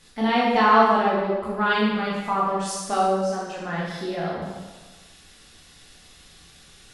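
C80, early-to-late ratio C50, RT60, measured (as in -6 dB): 2.0 dB, -0.5 dB, 1.2 s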